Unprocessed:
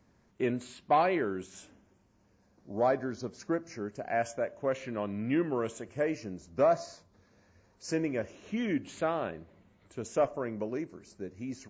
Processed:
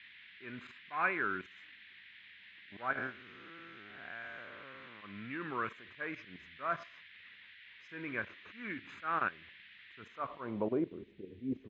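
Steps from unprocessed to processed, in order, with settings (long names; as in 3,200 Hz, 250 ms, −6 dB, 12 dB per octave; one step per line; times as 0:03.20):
0:02.91–0:05.02: spectrum smeared in time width 311 ms
RIAA equalisation playback
comb filter 0.8 ms, depth 55%
dynamic equaliser 2,000 Hz, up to +6 dB, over −51 dBFS, Q 1.7
output level in coarse steps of 15 dB
volume swells 154 ms
noise in a band 1,800–3,800 Hz −59 dBFS
band-pass filter sweep 1,600 Hz → 430 Hz, 0:09.94–0:11.08
level +10 dB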